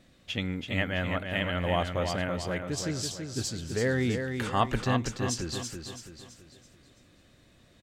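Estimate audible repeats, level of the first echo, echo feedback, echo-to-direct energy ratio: 4, −6.0 dB, 43%, −5.0 dB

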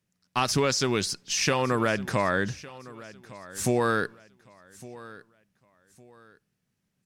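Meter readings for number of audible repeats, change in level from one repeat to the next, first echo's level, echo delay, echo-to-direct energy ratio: 2, −10.5 dB, −19.0 dB, 1,159 ms, −18.5 dB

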